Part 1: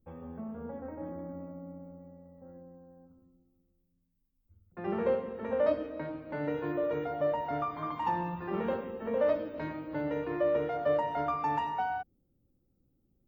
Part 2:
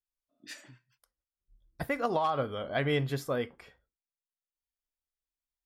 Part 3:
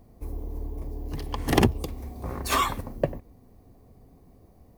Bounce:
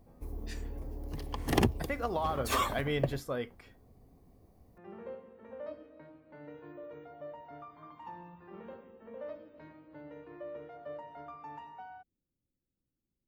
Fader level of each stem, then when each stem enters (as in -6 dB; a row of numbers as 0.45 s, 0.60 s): -15.5 dB, -4.0 dB, -6.5 dB; 0.00 s, 0.00 s, 0.00 s